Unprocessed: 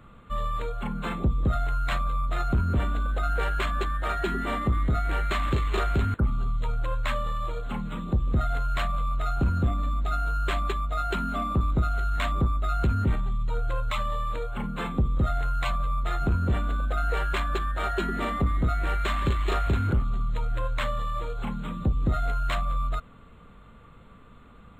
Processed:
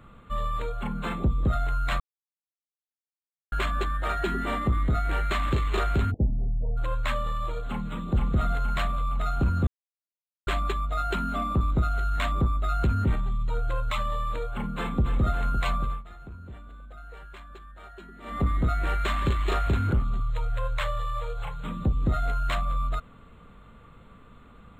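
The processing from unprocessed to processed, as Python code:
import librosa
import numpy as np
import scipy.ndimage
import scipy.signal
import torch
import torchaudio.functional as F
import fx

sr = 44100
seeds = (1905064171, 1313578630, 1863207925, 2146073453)

y = fx.steep_lowpass(x, sr, hz=800.0, slope=96, at=(6.1, 6.76), fade=0.02)
y = fx.echo_throw(y, sr, start_s=7.67, length_s=0.4, ms=470, feedback_pct=50, wet_db=-3.0)
y = fx.echo_throw(y, sr, start_s=14.51, length_s=0.54, ms=280, feedback_pct=80, wet_db=-8.5)
y = fx.ellip_bandstop(y, sr, low_hz=140.0, high_hz=460.0, order=3, stop_db=40, at=(20.2, 21.64))
y = fx.edit(y, sr, fx.silence(start_s=2.0, length_s=1.52),
    fx.silence(start_s=9.67, length_s=0.8),
    fx.fade_down_up(start_s=15.83, length_s=2.61, db=-18.0, fade_s=0.21), tone=tone)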